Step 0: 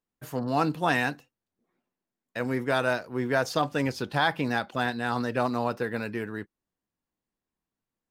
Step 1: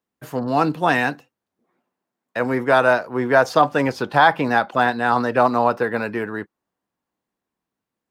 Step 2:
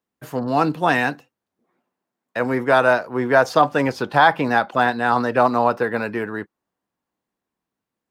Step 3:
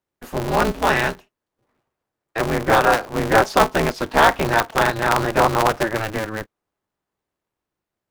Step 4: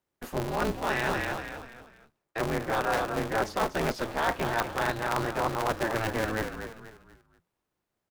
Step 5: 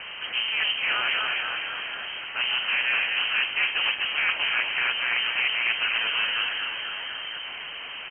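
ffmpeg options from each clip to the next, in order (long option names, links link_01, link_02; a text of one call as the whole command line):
ffmpeg -i in.wav -filter_complex "[0:a]highpass=frequency=160:poles=1,highshelf=frequency=3100:gain=-6.5,acrossover=split=670|1300[link_01][link_02][link_03];[link_02]dynaudnorm=framelen=380:gausssize=9:maxgain=8dB[link_04];[link_01][link_04][link_03]amix=inputs=3:normalize=0,volume=7.5dB" out.wav
ffmpeg -i in.wav -af anull out.wav
ffmpeg -i in.wav -af "aeval=exprs='val(0)*sgn(sin(2*PI*110*n/s))':channel_layout=same" out.wav
ffmpeg -i in.wav -filter_complex "[0:a]asplit=5[link_01][link_02][link_03][link_04][link_05];[link_02]adelay=242,afreqshift=-44,volume=-11dB[link_06];[link_03]adelay=484,afreqshift=-88,volume=-19.6dB[link_07];[link_04]adelay=726,afreqshift=-132,volume=-28.3dB[link_08];[link_05]adelay=968,afreqshift=-176,volume=-36.9dB[link_09];[link_01][link_06][link_07][link_08][link_09]amix=inputs=5:normalize=0,areverse,acompressor=threshold=-26dB:ratio=5,areverse" out.wav
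ffmpeg -i in.wav -filter_complex "[0:a]aeval=exprs='val(0)+0.5*0.0355*sgn(val(0))':channel_layout=same,asplit=7[link_01][link_02][link_03][link_04][link_05][link_06][link_07];[link_02]adelay=274,afreqshift=36,volume=-9.5dB[link_08];[link_03]adelay=548,afreqshift=72,volume=-15.2dB[link_09];[link_04]adelay=822,afreqshift=108,volume=-20.9dB[link_10];[link_05]adelay=1096,afreqshift=144,volume=-26.5dB[link_11];[link_06]adelay=1370,afreqshift=180,volume=-32.2dB[link_12];[link_07]adelay=1644,afreqshift=216,volume=-37.9dB[link_13];[link_01][link_08][link_09][link_10][link_11][link_12][link_13]amix=inputs=7:normalize=0,lowpass=frequency=2700:width_type=q:width=0.5098,lowpass=frequency=2700:width_type=q:width=0.6013,lowpass=frequency=2700:width_type=q:width=0.9,lowpass=frequency=2700:width_type=q:width=2.563,afreqshift=-3200" out.wav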